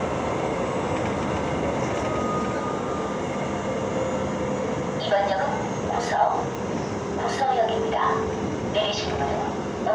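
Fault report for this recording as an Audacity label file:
6.550000	6.550000	pop -17 dBFS

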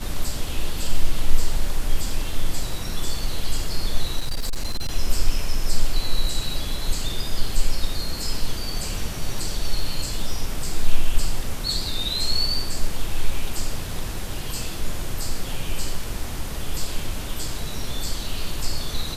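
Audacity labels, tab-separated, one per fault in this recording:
4.190000	4.890000	clipped -19 dBFS

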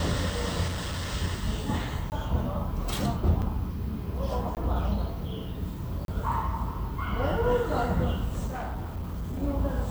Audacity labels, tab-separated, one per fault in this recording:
0.670000	1.130000	clipped -28 dBFS
2.100000	2.120000	gap 19 ms
3.420000	3.430000	gap 6.7 ms
4.550000	4.570000	gap 18 ms
6.050000	6.080000	gap 32 ms
8.470000	9.430000	clipped -29.5 dBFS

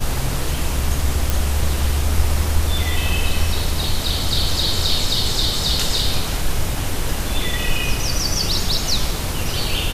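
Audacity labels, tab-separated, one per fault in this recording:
1.300000	1.300000	pop

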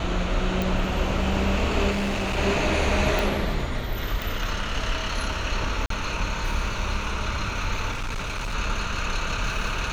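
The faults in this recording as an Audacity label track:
0.620000	0.620000	pop
1.900000	2.380000	clipped -22.5 dBFS
3.190000	3.190000	pop
4.220000	4.220000	pop
5.860000	5.900000	gap 43 ms
7.910000	8.550000	clipped -26 dBFS

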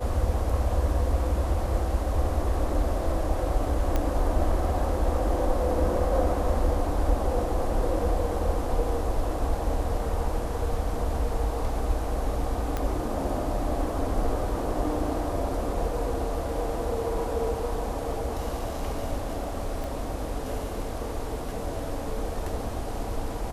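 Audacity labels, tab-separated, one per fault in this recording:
3.960000	3.960000	pop -13 dBFS
12.770000	12.770000	pop -15 dBFS
19.840000	19.840000	pop

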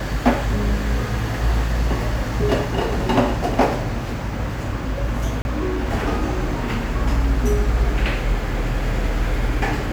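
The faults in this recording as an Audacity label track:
5.420000	5.450000	gap 31 ms

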